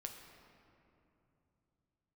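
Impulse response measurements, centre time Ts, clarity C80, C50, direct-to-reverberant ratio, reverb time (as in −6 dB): 57 ms, 6.0 dB, 5.5 dB, 3.0 dB, 2.9 s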